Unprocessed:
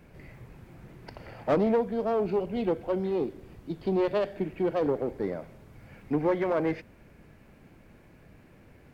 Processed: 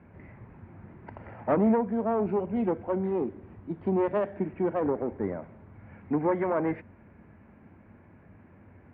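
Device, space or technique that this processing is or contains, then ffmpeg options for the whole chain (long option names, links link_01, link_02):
bass cabinet: -af "highpass=63,equalizer=frequency=95:width_type=q:width=4:gain=9,equalizer=frequency=130:width_type=q:width=4:gain=-5,equalizer=frequency=220:width_type=q:width=4:gain=5,equalizer=frequency=480:width_type=q:width=4:gain=-3,equalizer=frequency=940:width_type=q:width=4:gain=4,lowpass=frequency=2100:width=0.5412,lowpass=frequency=2100:width=1.3066"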